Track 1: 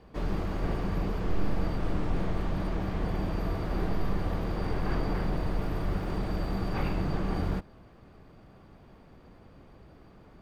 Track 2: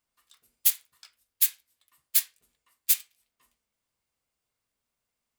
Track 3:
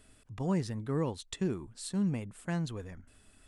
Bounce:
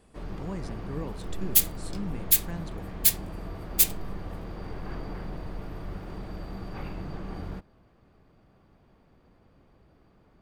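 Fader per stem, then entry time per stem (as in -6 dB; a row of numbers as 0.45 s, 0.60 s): -7.0 dB, +2.0 dB, -5.5 dB; 0.00 s, 0.90 s, 0.00 s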